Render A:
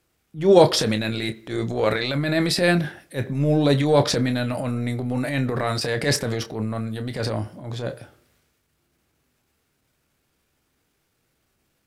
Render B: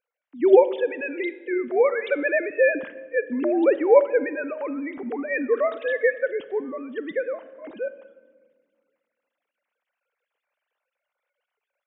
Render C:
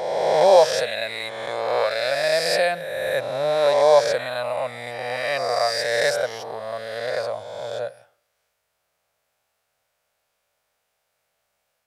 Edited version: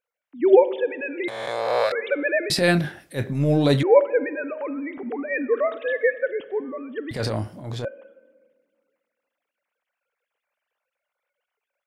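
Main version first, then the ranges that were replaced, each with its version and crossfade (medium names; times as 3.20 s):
B
1.28–1.92 s: from C
2.50–3.83 s: from A
7.11–7.85 s: from A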